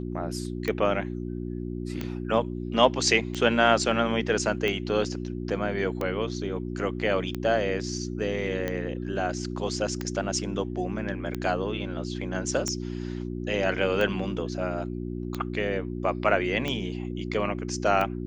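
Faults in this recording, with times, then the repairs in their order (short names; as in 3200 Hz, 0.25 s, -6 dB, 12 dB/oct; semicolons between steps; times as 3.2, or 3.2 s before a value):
hum 60 Hz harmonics 6 -33 dBFS
tick 45 rpm -16 dBFS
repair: de-click; de-hum 60 Hz, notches 6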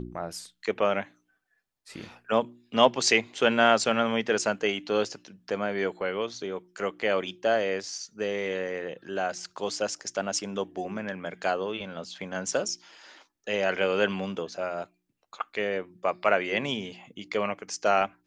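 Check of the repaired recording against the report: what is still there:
none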